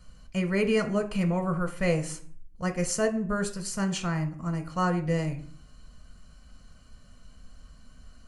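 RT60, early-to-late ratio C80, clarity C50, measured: 0.50 s, 16.5 dB, 12.5 dB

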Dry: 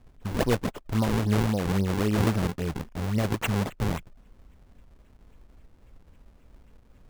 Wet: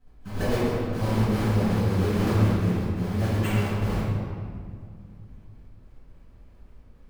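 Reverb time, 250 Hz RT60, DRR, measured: 2.2 s, 3.1 s, −14.5 dB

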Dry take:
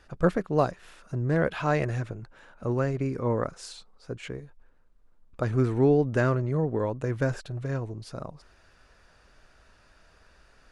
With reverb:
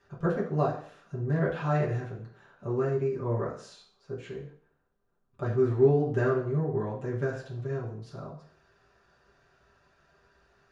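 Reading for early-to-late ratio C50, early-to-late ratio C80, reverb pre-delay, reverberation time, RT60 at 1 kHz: 7.0 dB, 11.5 dB, 3 ms, 0.50 s, 0.50 s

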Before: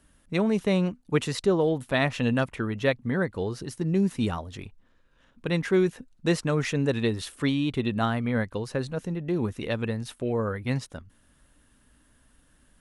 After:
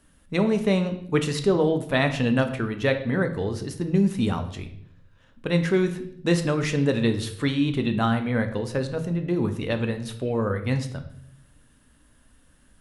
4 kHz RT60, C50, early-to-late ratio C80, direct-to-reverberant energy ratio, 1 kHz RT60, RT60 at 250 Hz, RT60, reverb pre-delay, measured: 0.60 s, 11.0 dB, 14.0 dB, 7.0 dB, 0.60 s, 0.95 s, 0.65 s, 3 ms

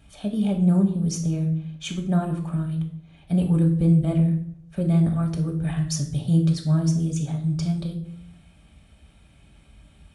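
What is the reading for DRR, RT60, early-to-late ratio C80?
2.0 dB, 0.60 s, 12.5 dB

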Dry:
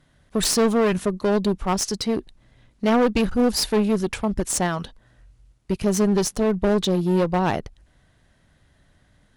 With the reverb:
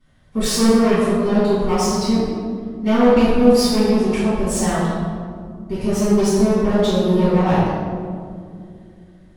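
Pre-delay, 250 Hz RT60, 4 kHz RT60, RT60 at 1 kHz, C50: 4 ms, 3.6 s, 1.0 s, 1.9 s, −3.0 dB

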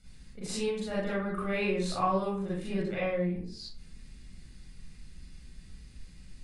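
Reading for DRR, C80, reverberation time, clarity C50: −9.0 dB, 5.0 dB, 0.45 s, −1.0 dB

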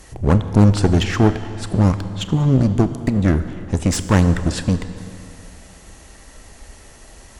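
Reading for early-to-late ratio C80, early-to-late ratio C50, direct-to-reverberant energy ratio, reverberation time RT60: 12.0 dB, 11.5 dB, 10.5 dB, 2.6 s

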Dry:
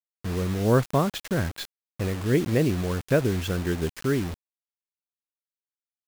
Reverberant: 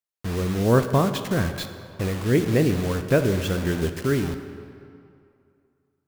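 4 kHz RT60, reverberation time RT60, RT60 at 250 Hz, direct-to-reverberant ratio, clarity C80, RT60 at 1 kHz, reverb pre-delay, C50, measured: 1.6 s, 2.5 s, 2.3 s, 8.0 dB, 10.5 dB, 2.6 s, 8 ms, 9.5 dB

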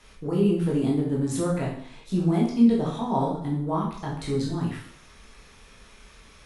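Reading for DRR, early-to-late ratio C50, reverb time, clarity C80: −4.5 dB, 3.5 dB, 0.60 s, 7.5 dB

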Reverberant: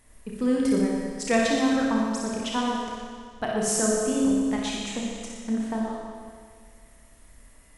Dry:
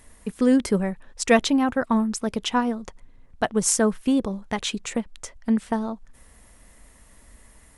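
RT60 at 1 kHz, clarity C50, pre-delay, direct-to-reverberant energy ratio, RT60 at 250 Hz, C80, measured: 1.9 s, −2.0 dB, 30 ms, −3.5 dB, 1.9 s, 0.5 dB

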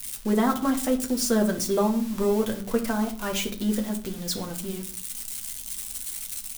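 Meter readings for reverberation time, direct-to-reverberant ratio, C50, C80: 0.50 s, 2.5 dB, 12.0 dB, 16.5 dB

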